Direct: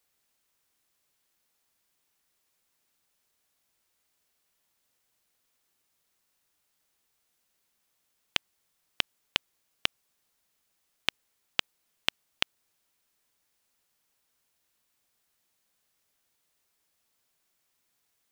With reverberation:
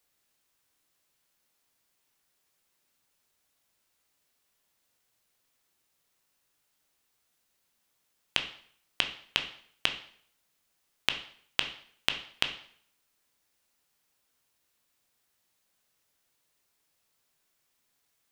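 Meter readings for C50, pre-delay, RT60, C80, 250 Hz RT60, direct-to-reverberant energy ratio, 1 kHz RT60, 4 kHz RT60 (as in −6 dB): 10.5 dB, 6 ms, 0.60 s, 14.5 dB, 0.60 s, 5.5 dB, 0.55 s, 0.55 s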